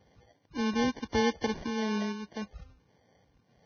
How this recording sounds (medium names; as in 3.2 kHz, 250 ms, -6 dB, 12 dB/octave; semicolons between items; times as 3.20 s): phasing stages 6, 1.7 Hz, lowest notch 610–2500 Hz; aliases and images of a low sample rate 1.3 kHz, jitter 0%; Vorbis